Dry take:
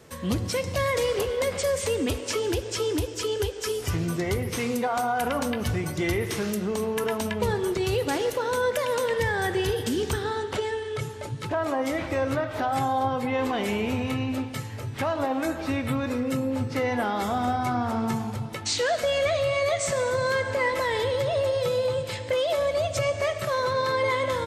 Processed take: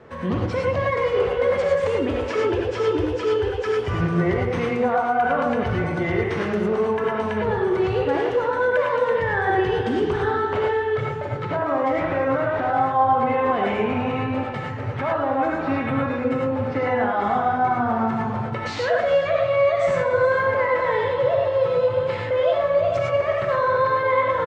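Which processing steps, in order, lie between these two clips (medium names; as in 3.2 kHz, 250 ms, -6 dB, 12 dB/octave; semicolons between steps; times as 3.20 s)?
low-pass 1.6 kHz 12 dB/octave; bass shelf 360 Hz -7 dB; peak limiter -25.5 dBFS, peak gain reduction 8 dB; on a send: delay 427 ms -16 dB; on the sum: gated-style reverb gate 130 ms rising, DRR -1.5 dB; trim +8 dB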